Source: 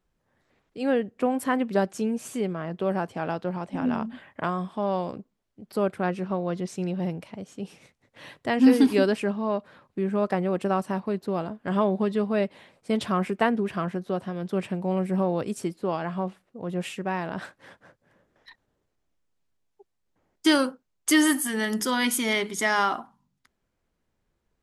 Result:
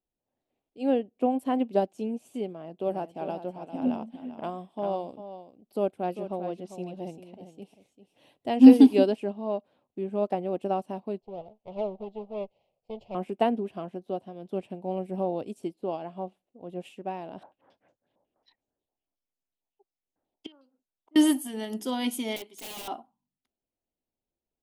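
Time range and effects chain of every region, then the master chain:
2.48–8.58 high shelf 8000 Hz +6.5 dB + echo 0.397 s -8 dB
11.2–13.15 minimum comb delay 0.41 ms + air absorption 200 m + fixed phaser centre 680 Hz, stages 4
17.43–21.16 flipped gate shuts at -19 dBFS, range -27 dB + stepped low-pass 11 Hz 920–6900 Hz
22.36–22.88 HPF 620 Hz 6 dB/oct + wrapped overs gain 23.5 dB
whole clip: EQ curve 180 Hz 0 dB, 260 Hz +8 dB, 470 Hz +5 dB, 740 Hz +9 dB, 1200 Hz -5 dB, 1800 Hz -8 dB, 2800 Hz +5 dB, 5000 Hz -1 dB, 7100 Hz -1 dB, 12000 Hz +3 dB; upward expander 1.5:1, over -38 dBFS; gain -2 dB

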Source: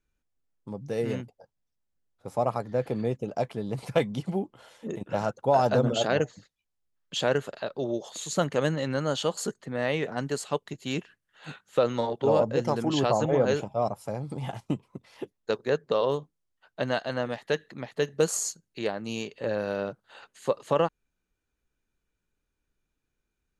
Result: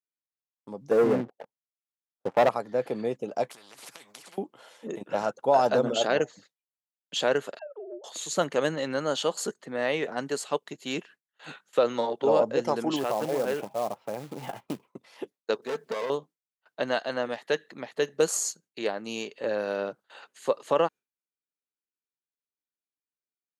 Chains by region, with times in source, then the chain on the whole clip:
0.91–2.49 LPF 1100 Hz + sample leveller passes 3
3.5–4.38 compressor 10:1, threshold -38 dBFS + spectral compressor 4:1
7.59–8.04 sine-wave speech + treble ducked by the level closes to 810 Hz, closed at -27.5 dBFS + compressor 2.5:1, threshold -42 dBFS
12.96–14.88 compressor 2:1, threshold -26 dBFS + LPF 3000 Hz 24 dB/oct + short-mantissa float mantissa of 2-bit
15.62–16.1 G.711 law mismatch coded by mu + tube stage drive 29 dB, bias 0.75 + comb 4.5 ms, depth 44%
whole clip: gate with hold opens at -46 dBFS; HPF 260 Hz 12 dB/oct; gain +1 dB

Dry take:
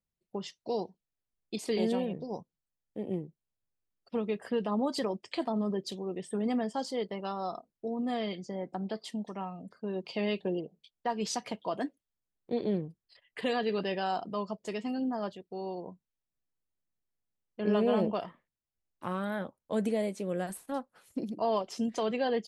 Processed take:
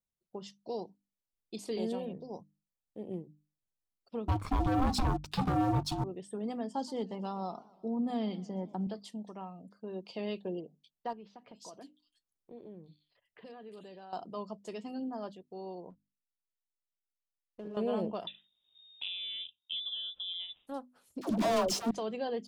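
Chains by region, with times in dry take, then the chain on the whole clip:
4.28–6.04 ring modulator 520 Hz + low shelf 300 Hz +9.5 dB + sample leveller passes 3
6.71–8.87 small resonant body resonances 200/870 Hz, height 9 dB, ringing for 25 ms + warbling echo 0.123 s, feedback 59%, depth 180 cents, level -21 dB
11.13–14.13 compressor 2.5:1, threshold -46 dBFS + bands offset in time lows, highs 0.35 s, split 3200 Hz
15.9–17.77 air absorption 220 m + compressor 10:1, threshold -33 dBFS + backlash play -49.5 dBFS
18.27–20.67 bell 2300 Hz -13 dB 1.5 oct + inverted band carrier 3700 Hz + three-band squash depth 100%
21.21–21.91 sample leveller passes 5 + dispersion lows, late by 87 ms, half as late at 570 Hz
whole clip: bell 2000 Hz -6.5 dB 0.83 oct; notches 50/100/150/200/250/300 Hz; gain -5 dB

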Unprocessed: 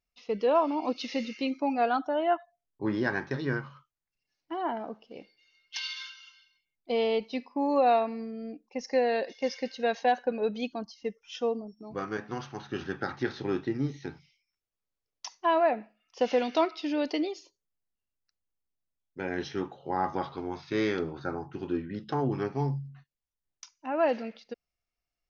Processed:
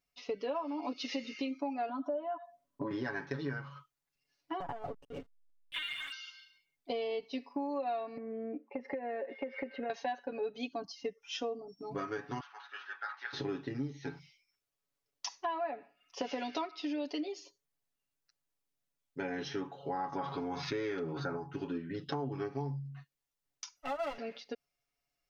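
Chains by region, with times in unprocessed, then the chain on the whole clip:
1.89–2.91 compressor 2.5:1, threshold -43 dBFS + small resonant body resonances 240/580/1000 Hz, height 18 dB, ringing for 40 ms
4.6–6.12 LPC vocoder at 8 kHz pitch kept + backlash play -48.5 dBFS + core saturation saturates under 150 Hz
8.17–9.9 speaker cabinet 220–2400 Hz, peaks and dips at 230 Hz +10 dB, 350 Hz +9 dB, 550 Hz +10 dB, 860 Hz +5 dB, 1300 Hz +6 dB, 2100 Hz +6 dB + compressor 4:1, threshold -35 dBFS
12.4–13.33 ladder high-pass 920 Hz, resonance 30% + air absorption 160 m
20.12–21.37 dynamic EQ 4400 Hz, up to -6 dB, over -54 dBFS, Q 1.4 + fast leveller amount 50%
23.76–24.18 minimum comb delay 1.4 ms + comb 1.5 ms, depth 41% + dynamic EQ 580 Hz, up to -4 dB, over -32 dBFS, Q 1.4
whole clip: low shelf 73 Hz -9.5 dB; comb 7.1 ms, depth 88%; compressor 5:1, threshold -36 dBFS; gain +1 dB

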